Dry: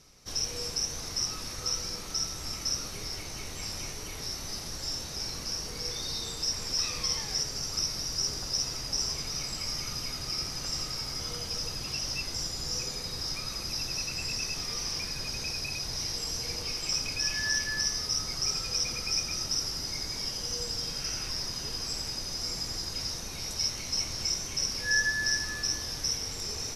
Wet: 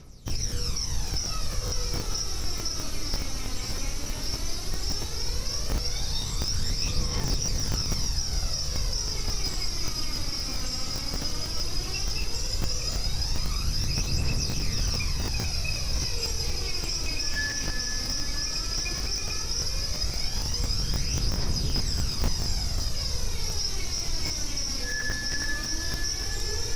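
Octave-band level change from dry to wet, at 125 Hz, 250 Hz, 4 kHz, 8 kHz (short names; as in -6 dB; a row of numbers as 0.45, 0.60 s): +11.0, +7.0, +1.0, +0.5 dB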